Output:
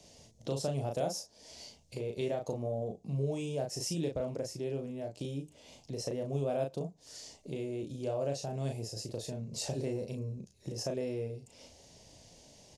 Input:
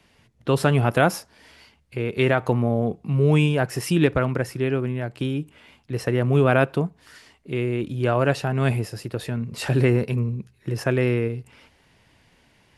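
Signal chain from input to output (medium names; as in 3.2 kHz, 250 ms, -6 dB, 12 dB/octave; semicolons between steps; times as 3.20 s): FFT filter 370 Hz 0 dB, 600 Hz +8 dB, 1.4 kHz -15 dB, 2.6 kHz -6 dB, 6.4 kHz +15 dB, 11 kHz 0 dB; compression 2:1, threshold -45 dBFS, peak gain reduction 18 dB; doubling 36 ms -4 dB; trim -1.5 dB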